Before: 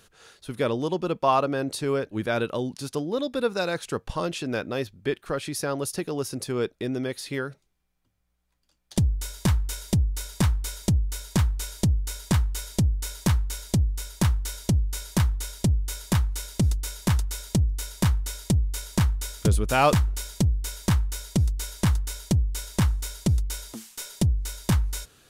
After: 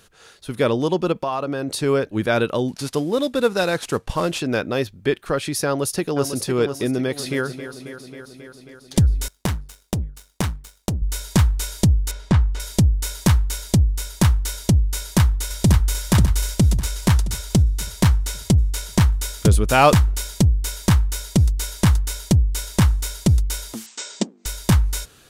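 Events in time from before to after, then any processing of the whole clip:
1.12–1.80 s: compression 5:1, threshold -27 dBFS
2.68–4.40 s: CVSD coder 64 kbps
5.66–6.36 s: echo throw 500 ms, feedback 40%, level -8 dB
6.92–7.44 s: echo throw 270 ms, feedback 75%, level -11.5 dB
9.28–11.02 s: power-law waveshaper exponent 2
12.11–12.60 s: tape spacing loss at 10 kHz 21 dB
14.96–16.00 s: echo throw 540 ms, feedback 45%, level -4 dB
16.79–19.02 s: loudspeaker Doppler distortion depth 0.12 ms
23.86–24.46 s: brick-wall FIR band-pass 190–8500 Hz
whole clip: level rider gain up to 3 dB; trim +3.5 dB

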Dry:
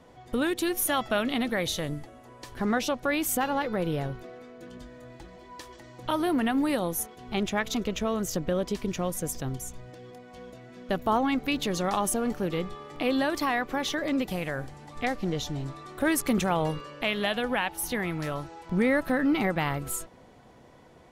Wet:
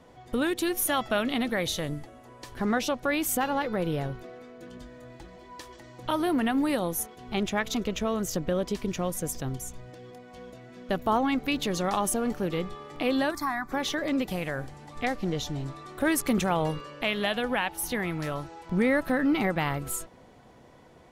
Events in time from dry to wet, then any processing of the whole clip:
13.31–13.72 s: static phaser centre 1.2 kHz, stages 4

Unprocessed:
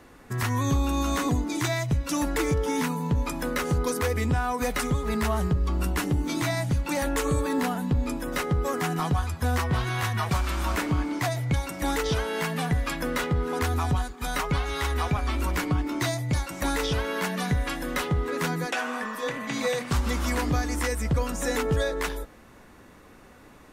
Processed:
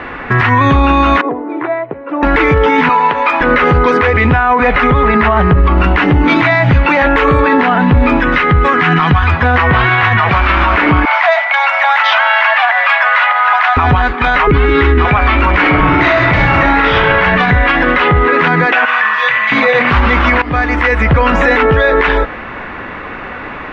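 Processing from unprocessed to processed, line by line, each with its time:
1.21–2.23 s: ladder band-pass 500 Hz, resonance 35%
2.89–3.41 s: high-pass 610 Hz
4.43–5.78 s: low-pass 3.4 kHz 6 dB/octave
8.20–9.28 s: peaking EQ 610 Hz -9.5 dB 1.5 oct
11.05–13.77 s: steep high-pass 600 Hz 96 dB/octave
14.47–15.05 s: resonant low shelf 470 Hz +10 dB, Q 3
15.61–17.01 s: reverb throw, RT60 1 s, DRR -6 dB
18.85–19.52 s: amplifier tone stack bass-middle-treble 10-0-10
20.42–21.33 s: fade in, from -19.5 dB
whole clip: low-pass 2.5 kHz 24 dB/octave; tilt shelf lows -7 dB, about 750 Hz; loudness maximiser +28 dB; trim -1 dB

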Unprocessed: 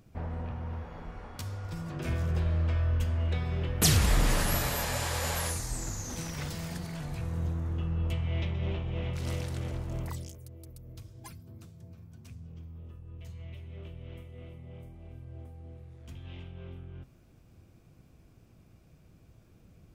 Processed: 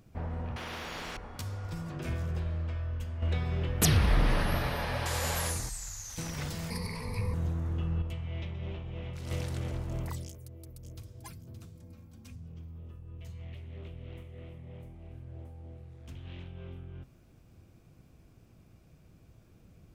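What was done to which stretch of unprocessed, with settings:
0.56–1.17 s: spectrum-flattening compressor 4:1
1.74–3.22 s: fade out quadratic, to -8 dB
3.85–5.06 s: boxcar filter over 6 samples
5.69–6.18 s: amplifier tone stack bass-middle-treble 10-0-10
6.70–7.34 s: rippled EQ curve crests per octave 0.89, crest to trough 18 dB
8.02–9.31 s: gain -6 dB
10.26–11.20 s: echo throw 570 ms, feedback 25%, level -9.5 dB
11.75–12.36 s: comb 3.7 ms
13.40–16.48 s: loudspeaker Doppler distortion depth 0.33 ms

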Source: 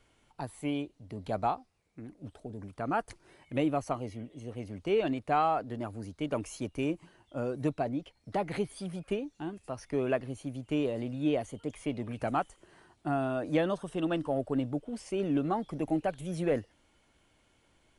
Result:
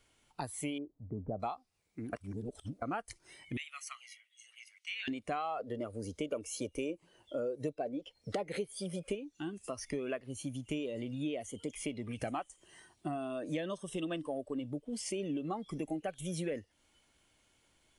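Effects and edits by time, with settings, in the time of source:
0.78–1.40 s: Gaussian low-pass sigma 8.2 samples
2.13–2.82 s: reverse
3.57–5.08 s: ladder high-pass 1.5 kHz, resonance 35%
5.59–9.15 s: peaking EQ 500 Hz +10 dB 0.72 oct
12.16–15.52 s: band-stop 1.4 kHz, Q 9.4
whole clip: treble shelf 2.6 kHz +9 dB; compression 4:1, threshold -40 dBFS; spectral noise reduction 10 dB; trim +4 dB

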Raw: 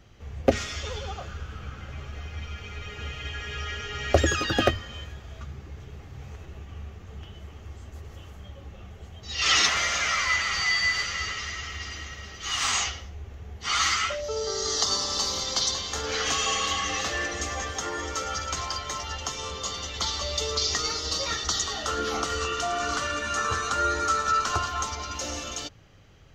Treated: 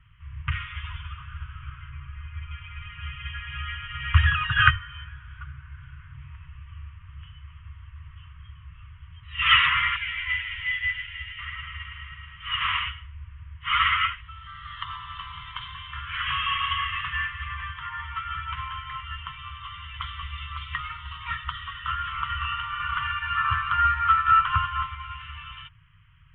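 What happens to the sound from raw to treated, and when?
1.90–2.51 s: distance through air 260 m
4.56–6.14 s: peaking EQ 1.5 kHz +14 dB 0.21 oct
9.96–11.39 s: static phaser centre 490 Hz, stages 4
whole clip: FFT band-reject 170–920 Hz; steep low-pass 3.2 kHz 96 dB/octave; upward expansion 1.5:1, over -37 dBFS; trim +7.5 dB

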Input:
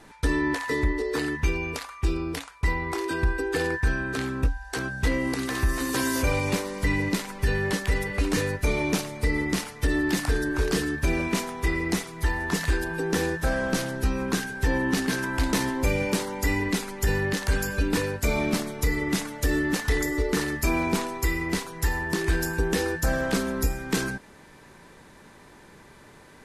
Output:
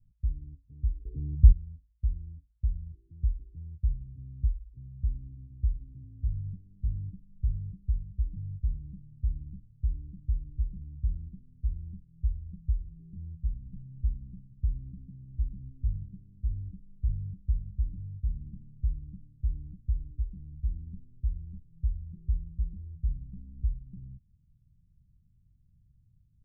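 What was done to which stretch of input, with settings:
1.05–1.52 s: resonant low shelf 690 Hz +13 dB, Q 3
whole clip: inverse Chebyshev low-pass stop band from 710 Hz, stop band 80 dB; trim -3 dB

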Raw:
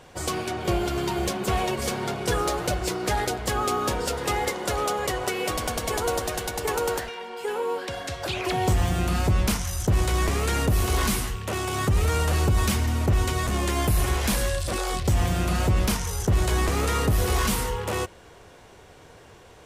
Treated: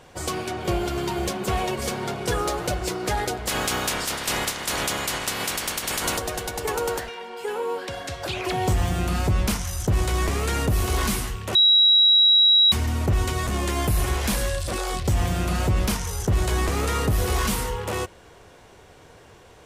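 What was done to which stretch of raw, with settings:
3.47–6.17 s: spectral peaks clipped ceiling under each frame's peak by 23 dB
11.55–12.72 s: bleep 3.87 kHz -12.5 dBFS

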